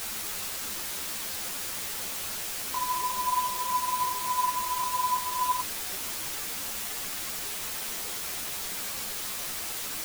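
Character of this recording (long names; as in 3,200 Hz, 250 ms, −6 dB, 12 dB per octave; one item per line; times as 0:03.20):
tremolo saw up 2.9 Hz, depth 60%
a quantiser's noise floor 6 bits, dither triangular
a shimmering, thickened sound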